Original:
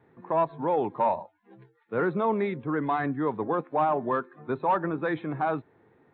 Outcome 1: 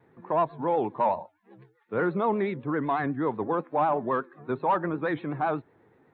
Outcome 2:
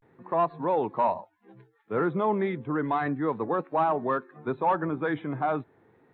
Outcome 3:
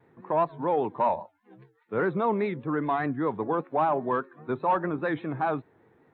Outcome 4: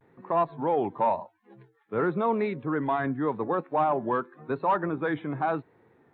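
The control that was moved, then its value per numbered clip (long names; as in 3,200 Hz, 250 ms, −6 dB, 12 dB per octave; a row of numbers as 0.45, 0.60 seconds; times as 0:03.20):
pitch vibrato, speed: 8.1, 0.34, 5, 0.92 Hertz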